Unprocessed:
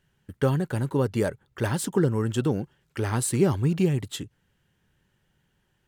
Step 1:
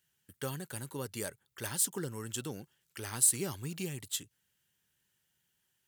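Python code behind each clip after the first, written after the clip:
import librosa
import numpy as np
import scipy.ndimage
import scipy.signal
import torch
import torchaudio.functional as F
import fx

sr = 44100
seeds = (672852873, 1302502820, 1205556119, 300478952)

y = scipy.signal.sosfilt(scipy.signal.butter(2, 63.0, 'highpass', fs=sr, output='sos'), x)
y = scipy.signal.lfilter([1.0, -0.9], [1.0], y)
y = F.gain(torch.from_numpy(y), 3.0).numpy()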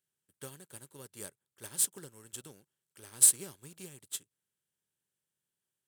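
y = fx.bin_compress(x, sr, power=0.6)
y = fx.upward_expand(y, sr, threshold_db=-46.0, expansion=2.5)
y = F.gain(torch.from_numpy(y), 4.5).numpy()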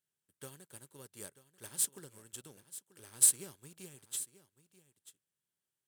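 y = x + 10.0 ** (-15.5 / 20.0) * np.pad(x, (int(937 * sr / 1000.0), 0))[:len(x)]
y = F.gain(torch.from_numpy(y), -3.0).numpy()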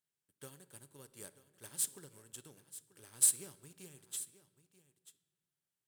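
y = fx.room_shoebox(x, sr, seeds[0], volume_m3=1300.0, walls='mixed', distance_m=0.31)
y = F.gain(torch.from_numpy(y), -3.0).numpy()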